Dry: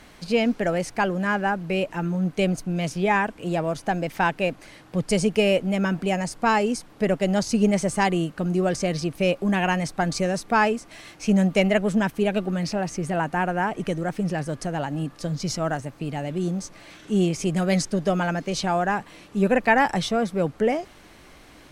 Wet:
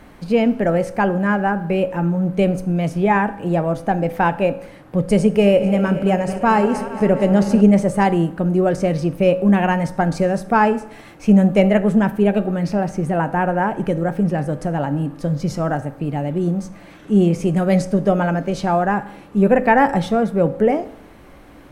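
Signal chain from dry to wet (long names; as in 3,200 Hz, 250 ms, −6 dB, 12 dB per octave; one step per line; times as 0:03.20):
0:05.21–0:07.61: feedback delay that plays each chunk backwards 112 ms, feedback 83%, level −13.5 dB
parametric band 5,500 Hz −13.5 dB 2.6 octaves
convolution reverb RT60 0.70 s, pre-delay 3 ms, DRR 11 dB
level +6.5 dB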